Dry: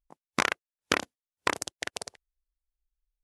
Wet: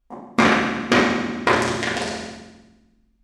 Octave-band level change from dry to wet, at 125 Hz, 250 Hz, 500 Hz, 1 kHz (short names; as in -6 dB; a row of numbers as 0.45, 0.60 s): +17.0, +19.0, +15.0, +12.5 dB